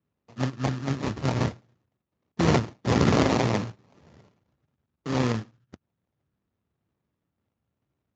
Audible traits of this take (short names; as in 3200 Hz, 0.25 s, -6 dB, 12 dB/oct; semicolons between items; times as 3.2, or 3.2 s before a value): a buzz of ramps at a fixed pitch in blocks of 32 samples; phasing stages 4, 0.62 Hz, lowest notch 500–1300 Hz; aliases and images of a low sample rate 1500 Hz, jitter 20%; Speex